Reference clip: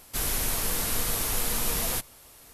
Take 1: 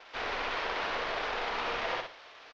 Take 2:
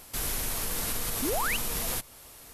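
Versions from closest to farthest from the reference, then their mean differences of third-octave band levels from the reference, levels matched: 2, 1; 2.0, 13.0 dB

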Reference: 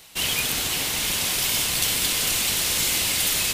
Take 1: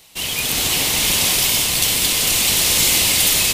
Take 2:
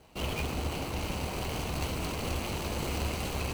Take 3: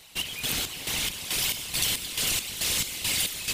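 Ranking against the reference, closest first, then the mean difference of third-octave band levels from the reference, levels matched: 1, 3, 2; 1.5, 4.0, 9.0 dB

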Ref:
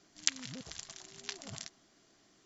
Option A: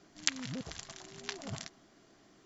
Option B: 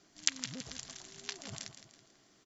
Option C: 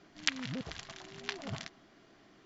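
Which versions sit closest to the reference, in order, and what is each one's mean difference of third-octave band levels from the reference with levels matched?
B, A, C; 2.0, 3.0, 4.5 dB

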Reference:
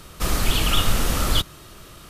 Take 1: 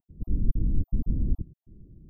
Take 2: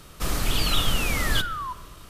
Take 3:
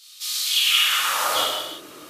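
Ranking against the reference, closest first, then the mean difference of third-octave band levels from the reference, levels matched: 2, 3, 1; 2.0, 13.5, 24.5 dB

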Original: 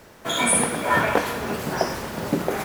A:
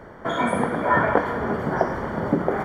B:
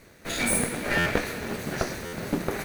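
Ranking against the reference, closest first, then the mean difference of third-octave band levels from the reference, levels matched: B, A; 2.5, 8.5 dB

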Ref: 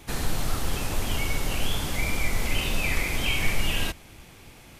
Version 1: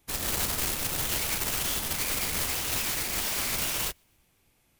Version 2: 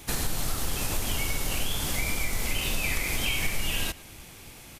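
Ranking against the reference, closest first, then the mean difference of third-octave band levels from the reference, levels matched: 2, 1; 2.5, 7.5 dB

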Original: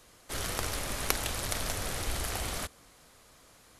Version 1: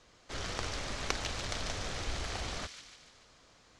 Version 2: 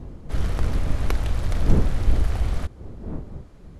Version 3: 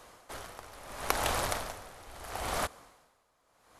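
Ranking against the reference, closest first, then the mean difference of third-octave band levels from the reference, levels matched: 1, 3, 2; 4.0, 7.5, 10.5 dB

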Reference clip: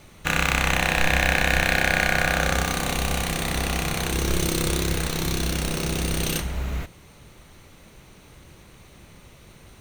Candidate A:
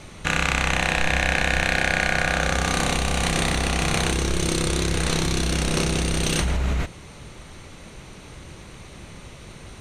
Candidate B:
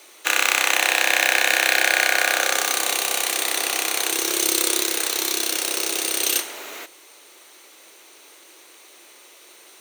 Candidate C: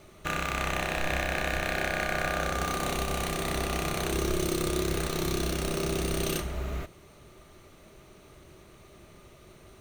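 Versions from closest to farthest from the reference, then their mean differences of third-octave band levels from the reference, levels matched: C, A, B; 2.0, 4.5, 9.0 dB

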